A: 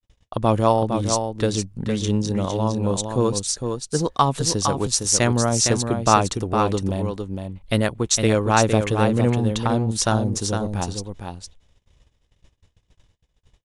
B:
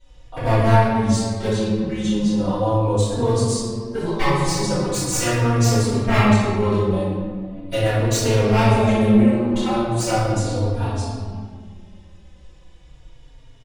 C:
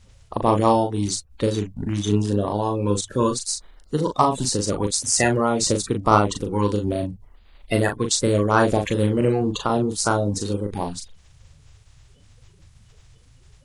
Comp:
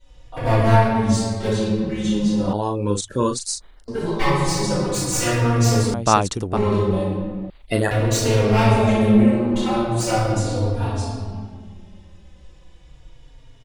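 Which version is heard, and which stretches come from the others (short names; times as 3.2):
B
2.53–3.88 from C
5.94–6.57 from A
7.5–7.91 from C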